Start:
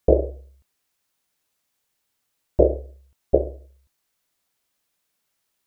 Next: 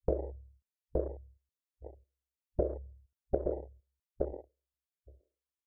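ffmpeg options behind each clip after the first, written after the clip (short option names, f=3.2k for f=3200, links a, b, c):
-filter_complex "[0:a]asplit=2[a][b];[b]adelay=869,lowpass=f=970:p=1,volume=-5dB,asplit=2[c][d];[d]adelay=869,lowpass=f=970:p=1,volume=0.15,asplit=2[e][f];[f]adelay=869,lowpass=f=970:p=1,volume=0.15[g];[c][e][g]amix=inputs=3:normalize=0[h];[a][h]amix=inputs=2:normalize=0,afwtdn=0.0316,acompressor=threshold=-19dB:ratio=6,volume=-7.5dB"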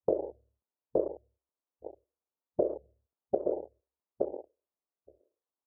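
-af "highpass=280,alimiter=limit=-21dB:level=0:latency=1:release=316,lowpass=f=1.1k:w=0.5412,lowpass=f=1.1k:w=1.3066,volume=6.5dB"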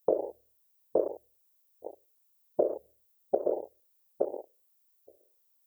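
-af "aemphasis=mode=production:type=riaa,volume=4.5dB"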